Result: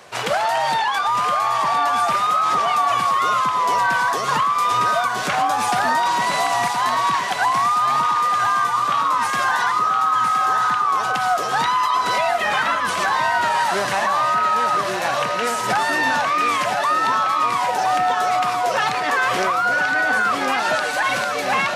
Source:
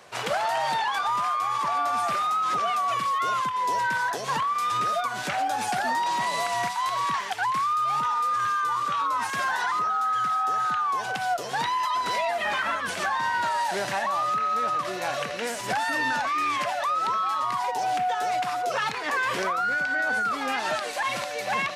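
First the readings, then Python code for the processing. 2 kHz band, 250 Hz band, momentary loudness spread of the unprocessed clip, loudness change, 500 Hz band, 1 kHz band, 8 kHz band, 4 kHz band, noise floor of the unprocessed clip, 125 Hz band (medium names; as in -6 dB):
+7.0 dB, +7.0 dB, 3 LU, +7.0 dB, +7.0 dB, +7.0 dB, +7.0 dB, +7.0 dB, -33 dBFS, +7.0 dB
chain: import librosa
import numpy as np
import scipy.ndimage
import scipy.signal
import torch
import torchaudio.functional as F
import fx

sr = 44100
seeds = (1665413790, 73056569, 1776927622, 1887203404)

y = fx.echo_feedback(x, sr, ms=1017, feedback_pct=56, wet_db=-7)
y = y * 10.0 ** (6.0 / 20.0)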